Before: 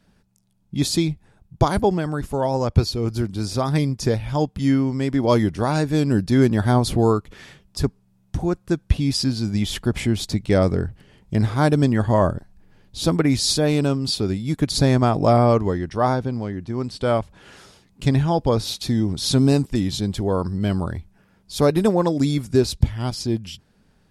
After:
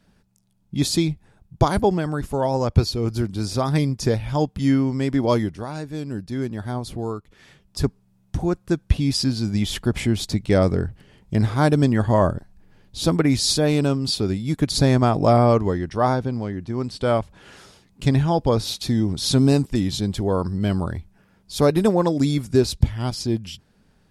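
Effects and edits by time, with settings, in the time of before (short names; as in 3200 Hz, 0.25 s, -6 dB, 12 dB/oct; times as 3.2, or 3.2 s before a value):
5.18–7.84 dip -10.5 dB, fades 0.48 s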